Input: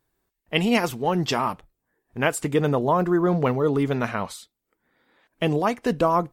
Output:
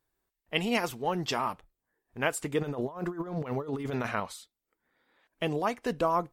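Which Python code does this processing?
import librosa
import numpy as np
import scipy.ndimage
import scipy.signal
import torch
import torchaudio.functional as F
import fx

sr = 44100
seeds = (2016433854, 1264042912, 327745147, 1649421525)

y = fx.peak_eq(x, sr, hz=160.0, db=-4.5, octaves=2.5)
y = fx.over_compress(y, sr, threshold_db=-27.0, ratio=-0.5, at=(2.61, 4.2))
y = F.gain(torch.from_numpy(y), -5.5).numpy()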